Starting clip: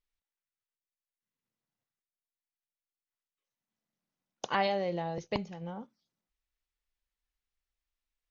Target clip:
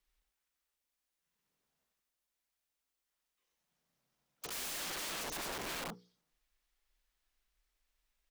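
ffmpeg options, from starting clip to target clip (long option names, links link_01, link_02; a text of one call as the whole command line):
ffmpeg -i in.wav -filter_complex "[0:a]acrossover=split=320[link_01][link_02];[link_02]asoftclip=type=tanh:threshold=-30.5dB[link_03];[link_01][link_03]amix=inputs=2:normalize=0,afreqshift=-50,bandreject=frequency=60:width_type=h:width=6,bandreject=frequency=120:width_type=h:width=6,bandreject=frequency=180:width_type=h:width=6,bandreject=frequency=240:width_type=h:width=6,bandreject=frequency=300:width_type=h:width=6,bandreject=frequency=360:width_type=h:width=6,bandreject=frequency=420:width_type=h:width=6,bandreject=frequency=480:width_type=h:width=6,aecho=1:1:90:0.501,alimiter=level_in=3.5dB:limit=-24dB:level=0:latency=1:release=83,volume=-3.5dB,aeval=exprs='(mod(141*val(0)+1,2)-1)/141':channel_layout=same,equalizer=frequency=95:width_type=o:width=0.71:gain=-13,volume=7dB" out.wav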